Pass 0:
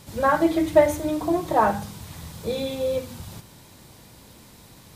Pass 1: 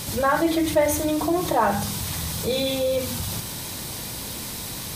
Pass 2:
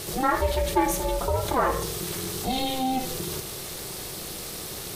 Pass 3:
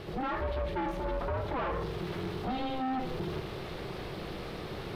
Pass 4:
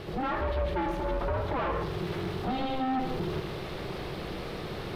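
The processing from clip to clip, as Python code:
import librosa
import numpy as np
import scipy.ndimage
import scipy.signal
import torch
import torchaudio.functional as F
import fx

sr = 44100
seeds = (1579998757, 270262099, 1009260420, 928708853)

y1 = fx.high_shelf(x, sr, hz=2700.0, db=8.5)
y1 = fx.notch(y1, sr, hz=7200.0, q=17.0)
y1 = fx.env_flatten(y1, sr, amount_pct=50)
y1 = y1 * librosa.db_to_amplitude(-5.5)
y2 = y1 * np.sin(2.0 * np.pi * 260.0 * np.arange(len(y1)) / sr)
y3 = fx.rider(y2, sr, range_db=3, speed_s=0.5)
y3 = np.clip(y3, -10.0 ** (-28.0 / 20.0), 10.0 ** (-28.0 / 20.0))
y3 = fx.air_absorb(y3, sr, metres=380.0)
y4 = y3 + 10.0 ** (-10.0 / 20.0) * np.pad(y3, (int(137 * sr / 1000.0), 0))[:len(y3)]
y4 = y4 * librosa.db_to_amplitude(2.5)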